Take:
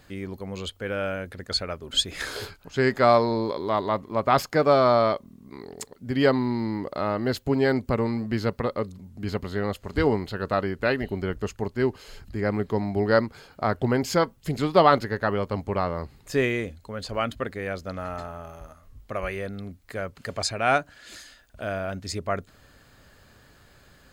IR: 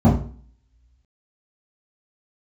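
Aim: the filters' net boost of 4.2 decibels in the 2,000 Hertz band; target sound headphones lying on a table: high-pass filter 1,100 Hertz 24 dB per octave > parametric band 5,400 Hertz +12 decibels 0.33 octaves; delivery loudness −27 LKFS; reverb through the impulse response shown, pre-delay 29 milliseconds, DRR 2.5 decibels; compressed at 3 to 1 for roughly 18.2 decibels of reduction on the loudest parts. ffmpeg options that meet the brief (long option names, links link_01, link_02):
-filter_complex "[0:a]equalizer=frequency=2000:width_type=o:gain=5.5,acompressor=threshold=-38dB:ratio=3,asplit=2[link_01][link_02];[1:a]atrim=start_sample=2205,adelay=29[link_03];[link_02][link_03]afir=irnorm=-1:irlink=0,volume=-22.5dB[link_04];[link_01][link_04]amix=inputs=2:normalize=0,highpass=frequency=1100:width=0.5412,highpass=frequency=1100:width=1.3066,equalizer=frequency=5400:width_type=o:width=0.33:gain=12,volume=14.5dB"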